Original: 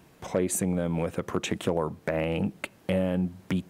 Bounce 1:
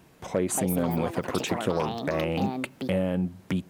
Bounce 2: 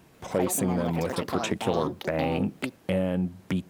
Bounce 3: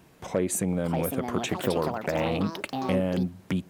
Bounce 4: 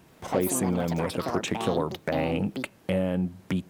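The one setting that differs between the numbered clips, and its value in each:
delay with pitch and tempo change per echo, delay time: 331, 146, 686, 80 milliseconds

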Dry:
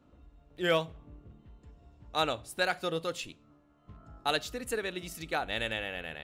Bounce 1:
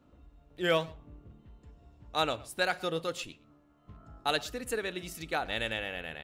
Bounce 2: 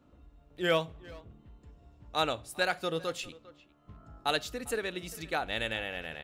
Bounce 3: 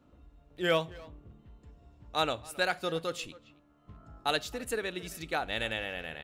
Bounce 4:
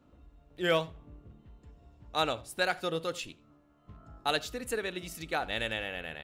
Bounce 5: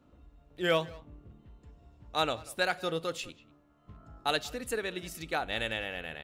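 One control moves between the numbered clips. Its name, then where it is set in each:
far-end echo of a speakerphone, delay time: 120, 400, 270, 80, 190 milliseconds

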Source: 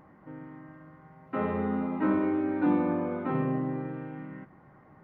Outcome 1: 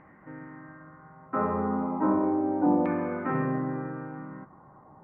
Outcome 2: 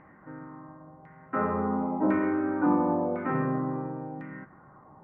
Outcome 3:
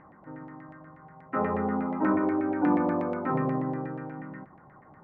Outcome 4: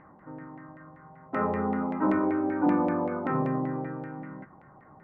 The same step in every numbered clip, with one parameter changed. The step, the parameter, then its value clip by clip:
auto-filter low-pass, speed: 0.35, 0.95, 8.3, 5.2 Hertz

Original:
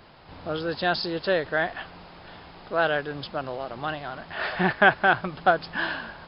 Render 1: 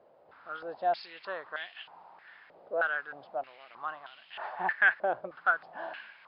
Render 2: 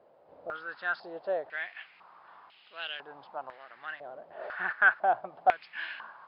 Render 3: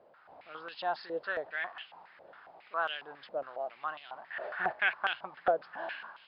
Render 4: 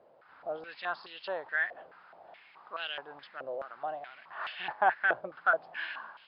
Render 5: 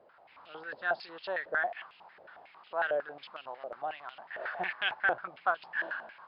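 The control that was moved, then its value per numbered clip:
band-pass on a step sequencer, speed: 3.2, 2, 7.3, 4.7, 11 Hertz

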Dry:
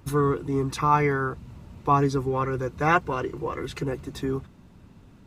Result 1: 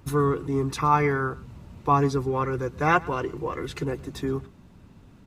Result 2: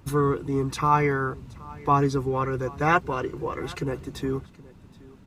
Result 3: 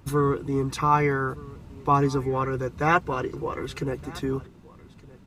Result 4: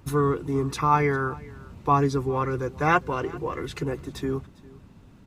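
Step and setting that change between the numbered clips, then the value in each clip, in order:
single-tap delay, delay time: 119, 773, 1,217, 402 milliseconds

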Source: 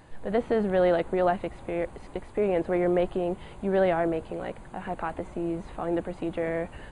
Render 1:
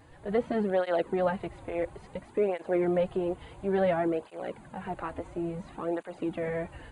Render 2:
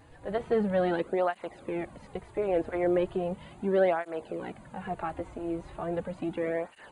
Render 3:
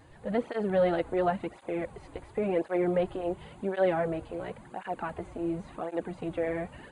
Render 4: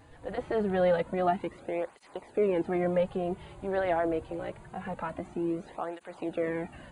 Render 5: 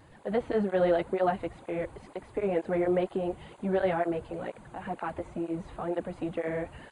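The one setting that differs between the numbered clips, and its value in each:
through-zero flanger with one copy inverted, nulls at: 0.58, 0.37, 0.93, 0.25, 2.1 Hertz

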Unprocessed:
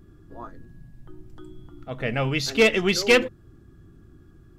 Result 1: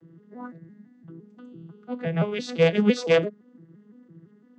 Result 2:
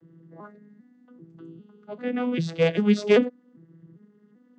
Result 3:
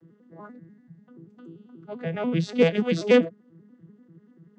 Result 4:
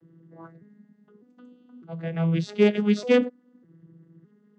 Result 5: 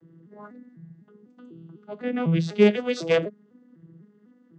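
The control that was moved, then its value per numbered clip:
vocoder with an arpeggio as carrier, a note every: 170, 395, 97, 605, 250 milliseconds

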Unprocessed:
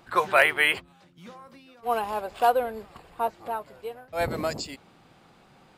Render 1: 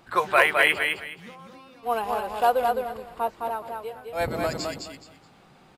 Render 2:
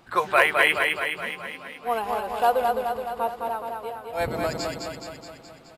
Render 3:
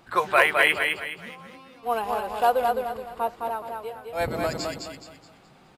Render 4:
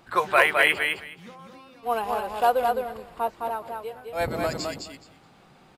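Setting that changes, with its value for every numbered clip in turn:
repeating echo, feedback: 24, 61, 36, 16%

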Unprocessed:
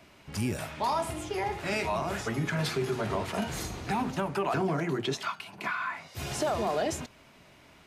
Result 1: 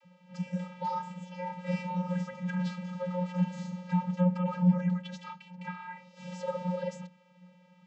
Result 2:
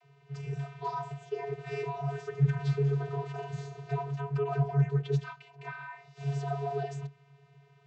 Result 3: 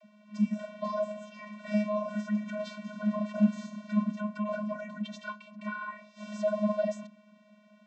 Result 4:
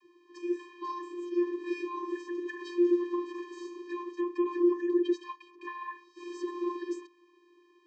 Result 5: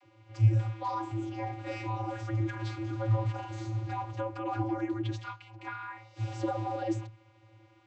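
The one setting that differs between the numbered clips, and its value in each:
channel vocoder, frequency: 180, 140, 210, 350, 110 Hertz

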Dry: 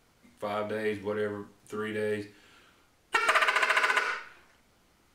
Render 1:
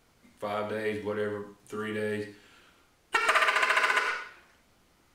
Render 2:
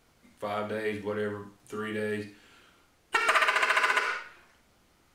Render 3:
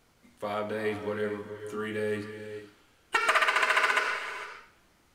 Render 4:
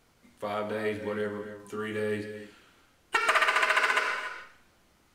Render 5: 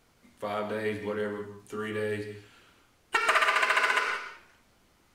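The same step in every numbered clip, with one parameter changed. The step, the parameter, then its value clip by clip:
reverb whose tail is shaped and stops, gate: 130, 90, 480, 310, 200 milliseconds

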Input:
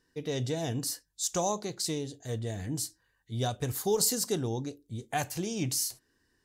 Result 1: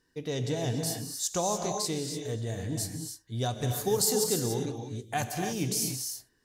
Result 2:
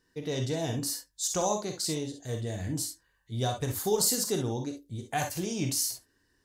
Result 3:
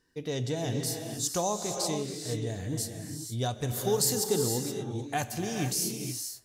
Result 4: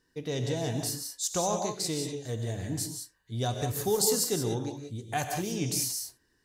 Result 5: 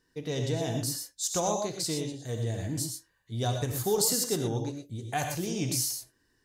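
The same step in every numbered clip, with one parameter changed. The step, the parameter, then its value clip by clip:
reverb whose tail is shaped and stops, gate: 320, 80, 500, 210, 140 milliseconds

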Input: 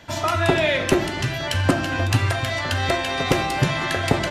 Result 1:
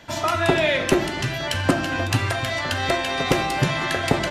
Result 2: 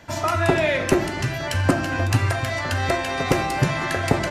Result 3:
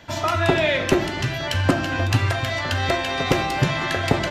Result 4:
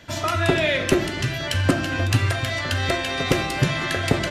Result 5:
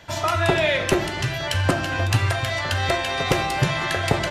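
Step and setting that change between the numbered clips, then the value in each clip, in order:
parametric band, centre frequency: 86, 3,400, 9,700, 860, 260 Hertz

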